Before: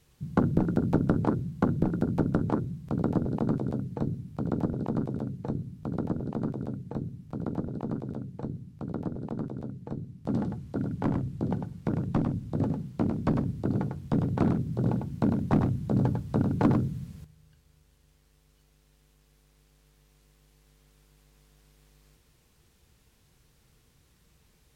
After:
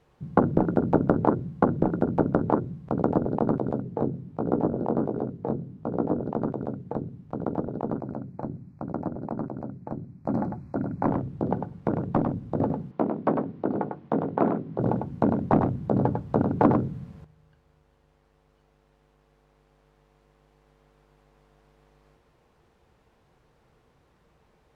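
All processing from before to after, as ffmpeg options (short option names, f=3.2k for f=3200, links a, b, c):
-filter_complex "[0:a]asettb=1/sr,asplit=3[a][b][c];[a]atrim=end=3.824[d];[b]atrim=start=3.82:end=6.22,asetpts=PTS-STARTPTS,afade=t=in:d=0.004:c=qsin,afade=t=out:st=2.396:d=0.004:c=qsin,equalizer=f=370:t=o:w=2.2:g=5,flanger=delay=16.5:depth=7:speed=1.4[e];[c]atrim=start=6.216[f];[d][e]acrossfade=d=0.004:c1=hsin:c2=qsin[g];[g][f]acrossfade=d=0.004:c1=qsin:c2=hsin,asettb=1/sr,asplit=3[h][i][j];[h]atrim=end=7.984[k];[i]atrim=start=7.98:end=11.07,asetpts=PTS-STARTPTS,afade=t=in:d=0.004:c=qsin,afade=t=out:st=3.086:d=0.004:c=qsin,asuperstop=centerf=3200:order=20:qfactor=2.5,equalizer=f=450:w=7.9:g=-13.5[l];[j]atrim=start=11.066[m];[k][l]acrossfade=d=0.004:c1=hsin:c2=qsin[n];[n][m]acrossfade=d=0.004:c1=qsin:c2=hsin,asettb=1/sr,asplit=3[o][p][q];[o]atrim=end=12.914[r];[p]atrim=start=12.91:end=14.8,asetpts=PTS-STARTPTS,afade=t=in:d=0.004:c=qsin,afade=t=out:st=1.886:d=0.004:c=qsin,highpass=210,lowpass=3.6k,asplit=2[s][t];[t]adelay=19,volume=-13dB[u];[s][u]amix=inputs=2:normalize=0,atrim=end_sample=83349[v];[q]atrim=start=14.796[w];[r][v]acrossfade=d=0.004:c1=hsin:c2=qsin[x];[x][w]acrossfade=d=0.004:c1=qsin:c2=hsin,lowpass=f=2.6k:p=1,equalizer=f=720:t=o:w=2.7:g=13.5,volume=-3.5dB"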